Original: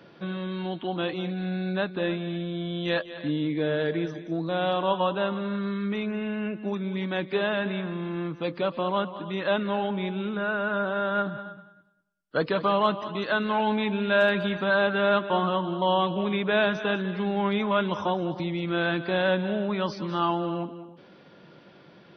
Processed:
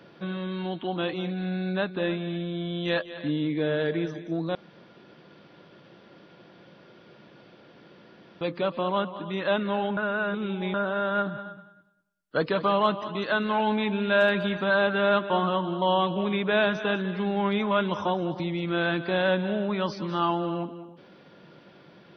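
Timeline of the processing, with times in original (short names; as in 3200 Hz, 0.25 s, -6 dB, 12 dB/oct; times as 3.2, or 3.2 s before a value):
4.55–8.41 room tone
9.97–10.74 reverse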